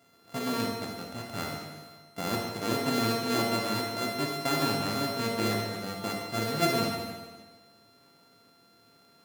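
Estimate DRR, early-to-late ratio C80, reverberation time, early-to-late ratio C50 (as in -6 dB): -0.5 dB, 3.5 dB, 1.4 s, 1.5 dB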